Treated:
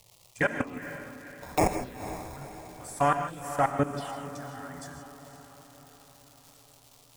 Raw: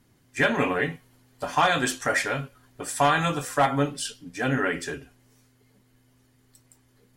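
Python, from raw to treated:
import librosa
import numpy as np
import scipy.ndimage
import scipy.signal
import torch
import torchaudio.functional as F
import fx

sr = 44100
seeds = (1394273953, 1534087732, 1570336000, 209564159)

p1 = fx.peak_eq(x, sr, hz=110.0, db=6.5, octaves=0.3)
p2 = fx.level_steps(p1, sr, step_db=21)
p3 = fx.sample_hold(p2, sr, seeds[0], rate_hz=1500.0, jitter_pct=0, at=(0.82, 2.37))
p4 = fx.dmg_crackle(p3, sr, seeds[1], per_s=360.0, level_db=-40.0)
p5 = fx.env_phaser(p4, sr, low_hz=250.0, high_hz=3800.0, full_db=-24.5)
p6 = p5 + fx.echo_diffused(p5, sr, ms=486, feedback_pct=55, wet_db=-12.0, dry=0)
y = fx.rev_gated(p6, sr, seeds[2], gate_ms=180, shape='rising', drr_db=8.5)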